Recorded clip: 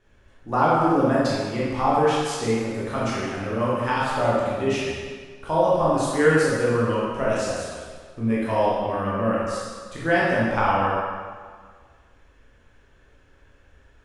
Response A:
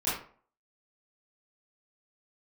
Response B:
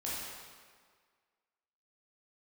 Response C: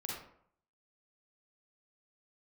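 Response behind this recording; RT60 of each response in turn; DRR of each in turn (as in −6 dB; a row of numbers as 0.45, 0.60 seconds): B; 0.45, 1.7, 0.65 seconds; −12.5, −8.0, −3.5 decibels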